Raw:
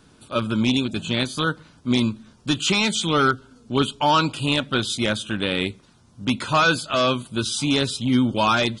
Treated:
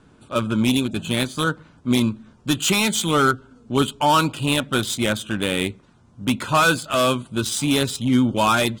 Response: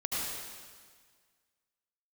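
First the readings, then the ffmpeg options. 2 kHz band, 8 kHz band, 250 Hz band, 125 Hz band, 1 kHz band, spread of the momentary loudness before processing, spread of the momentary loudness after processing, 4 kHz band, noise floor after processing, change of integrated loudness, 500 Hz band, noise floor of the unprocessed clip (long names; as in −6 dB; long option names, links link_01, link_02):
+1.0 dB, +4.5 dB, +1.5 dB, +1.5 dB, +1.5 dB, 7 LU, 8 LU, −0.5 dB, −54 dBFS, +1.0 dB, +1.5 dB, −55 dBFS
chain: -af "adynamicsmooth=sensitivity=3.5:basefreq=3500,highshelf=frequency=6300:width_type=q:width=1.5:gain=7.5,volume=1.5dB"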